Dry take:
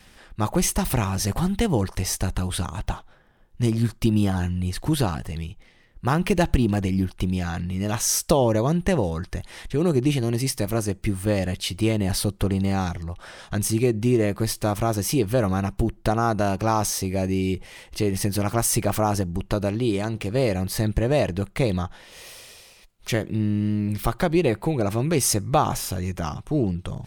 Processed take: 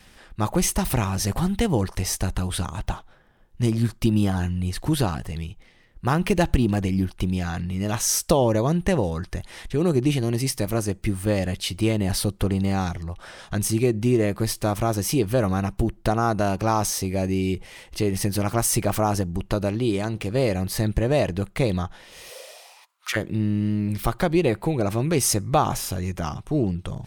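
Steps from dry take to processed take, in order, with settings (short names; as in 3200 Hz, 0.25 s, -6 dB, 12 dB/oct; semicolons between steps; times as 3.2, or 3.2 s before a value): 22.29–23.15 resonant high-pass 450 Hz -> 1400 Hz, resonance Q 4.9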